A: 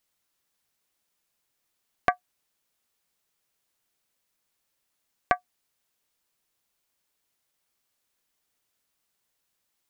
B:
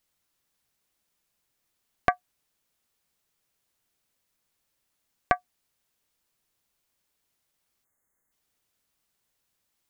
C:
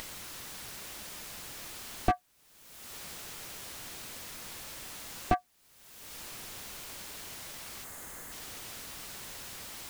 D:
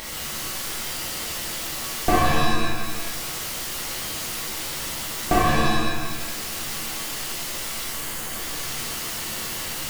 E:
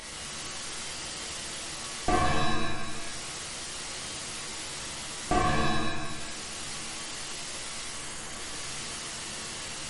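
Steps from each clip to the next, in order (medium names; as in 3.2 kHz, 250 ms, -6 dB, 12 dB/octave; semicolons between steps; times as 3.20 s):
spectral selection erased 7.84–8.32 s, 2.2–6.2 kHz; bass shelf 220 Hz +5.5 dB
upward compressor, threshold -26 dBFS; slew-rate limiter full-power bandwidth 31 Hz; trim +7 dB
pitch-shifted reverb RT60 1.4 s, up +7 st, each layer -2 dB, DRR -7.5 dB; trim +3.5 dB
trim -6 dB; MP3 48 kbps 44.1 kHz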